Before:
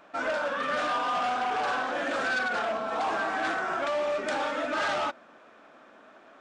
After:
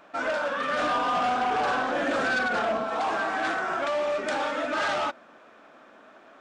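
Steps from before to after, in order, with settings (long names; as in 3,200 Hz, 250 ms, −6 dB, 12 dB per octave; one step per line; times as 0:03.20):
0:00.79–0:02.84: low-shelf EQ 430 Hz +7 dB
level +1.5 dB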